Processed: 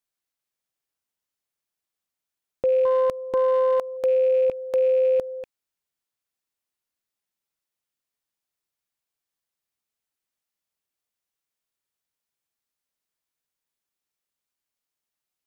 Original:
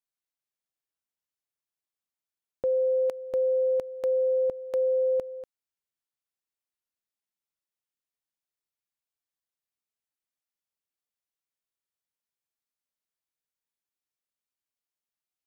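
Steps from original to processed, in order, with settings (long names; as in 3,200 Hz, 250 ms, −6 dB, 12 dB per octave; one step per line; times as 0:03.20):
loose part that buzzes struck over −53 dBFS, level −41 dBFS
0:02.85–0:03.97: highs frequency-modulated by the lows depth 0.36 ms
level +5 dB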